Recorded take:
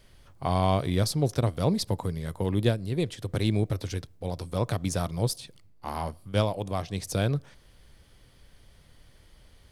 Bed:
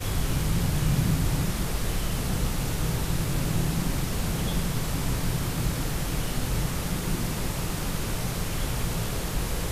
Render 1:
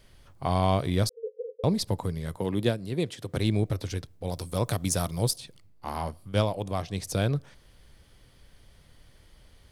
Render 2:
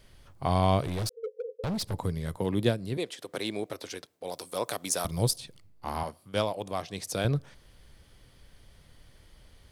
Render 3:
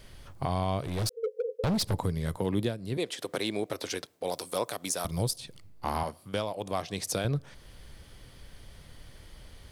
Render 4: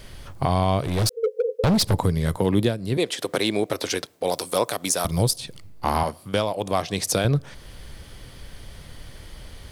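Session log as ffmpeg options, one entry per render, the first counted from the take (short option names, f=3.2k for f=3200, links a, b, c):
-filter_complex "[0:a]asettb=1/sr,asplit=3[a][b][c];[a]atrim=end=1.094[d];[b]atrim=start=1.09:end=1.64,asetpts=PTS-STARTPTS,afade=t=in:d=0.004:c=qsin,afade=t=out:st=0.546:d=0.004:c=qsin,asuperpass=centerf=470:order=12:qfactor=5[e];[c]atrim=start=1.636[f];[d][e]acrossfade=d=0.004:c1=hsin:c2=qsin[g];[g][f]acrossfade=d=0.004:c1=qsin:c2=hsin,asettb=1/sr,asplit=3[h][i][j];[h]atrim=end=2.374[k];[i]atrim=start=2.37:end=3.37,asetpts=PTS-STARTPTS,afade=t=in:d=0.004:c=qsin,afade=t=out:st=0.996:d=0.004:c=qsin,highpass=130[l];[j]atrim=start=3.366[m];[k][l]acrossfade=d=0.004:c1=hsin:c2=qsin[n];[n][m]acrossfade=d=0.004:c1=qsin:c2=hsin,asettb=1/sr,asplit=3[o][p][q];[o]atrim=end=4.274[r];[p]atrim=start=4.27:end=5.31,asetpts=PTS-STARTPTS,afade=t=in:d=0.004:c=qsin,afade=t=out:st=1.036:d=0.004:c=qsin,highshelf=f=6.4k:g=11.5[s];[q]atrim=start=5.306[t];[r][s]acrossfade=d=0.004:c1=hsin:c2=qsin[u];[u][t]acrossfade=d=0.004:c1=qsin:c2=hsin"
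-filter_complex "[0:a]asettb=1/sr,asplit=3[a][b][c];[a]atrim=end=0.814[d];[b]atrim=start=0.81:end=1.94,asetpts=PTS-STARTPTS,afade=t=in:d=0.004:c=qsin,afade=t=out:st=1.126:d=0.004:c=qsin,asoftclip=type=hard:threshold=-28.5dB[e];[c]atrim=start=1.936[f];[d][e]acrossfade=d=0.004:c1=hsin:c2=qsin[g];[g][f]acrossfade=d=0.004:c1=qsin:c2=hsin,asettb=1/sr,asplit=3[h][i][j];[h]atrim=end=2.974[k];[i]atrim=start=2.97:end=5.05,asetpts=PTS-STARTPTS,afade=t=in:d=0.004:c=qsin,afade=t=out:st=2.076:d=0.004:c=qsin,highpass=390[l];[j]atrim=start=5.046[m];[k][l]acrossfade=d=0.004:c1=hsin:c2=qsin[n];[n][m]acrossfade=d=0.004:c1=qsin:c2=hsin,asettb=1/sr,asplit=3[o][p][q];[o]atrim=end=6.034[r];[p]atrim=start=6.03:end=7.25,asetpts=PTS-STARTPTS,afade=t=in:d=0.004:c=qsin,afade=t=out:st=1.216:d=0.004:c=qsin,highpass=f=330:p=1[s];[q]atrim=start=7.246[t];[r][s]acrossfade=d=0.004:c1=hsin:c2=qsin[u];[u][t]acrossfade=d=0.004:c1=qsin:c2=hsin"
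-filter_complex "[0:a]asplit=2[a][b];[b]acompressor=threshold=-35dB:ratio=6,volume=0dB[c];[a][c]amix=inputs=2:normalize=0,alimiter=limit=-17dB:level=0:latency=1:release=487"
-af "volume=8.5dB"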